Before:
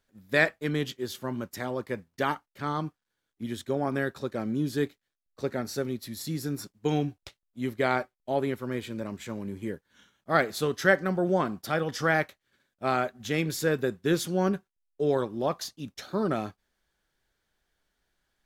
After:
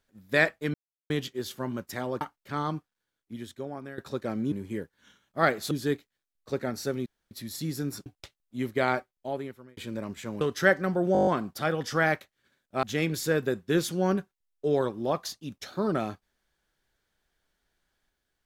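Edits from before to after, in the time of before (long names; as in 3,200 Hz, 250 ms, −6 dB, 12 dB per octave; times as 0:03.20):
0:00.74: splice in silence 0.36 s
0:01.85–0:02.31: remove
0:02.83–0:04.08: fade out, to −15.5 dB
0:05.97: splice in room tone 0.25 s
0:06.72–0:07.09: remove
0:07.98–0:08.80: fade out
0:09.44–0:10.63: move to 0:04.62
0:11.35: stutter 0.02 s, 8 plays
0:12.91–0:13.19: remove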